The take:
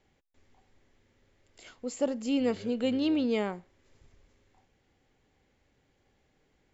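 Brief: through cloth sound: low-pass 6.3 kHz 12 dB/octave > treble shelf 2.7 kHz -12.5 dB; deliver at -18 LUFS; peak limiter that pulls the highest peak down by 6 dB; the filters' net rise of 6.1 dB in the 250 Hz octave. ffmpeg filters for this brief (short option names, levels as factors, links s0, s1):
-af "equalizer=f=250:t=o:g=7,alimiter=limit=0.112:level=0:latency=1,lowpass=6300,highshelf=f=2700:g=-12.5,volume=2.99"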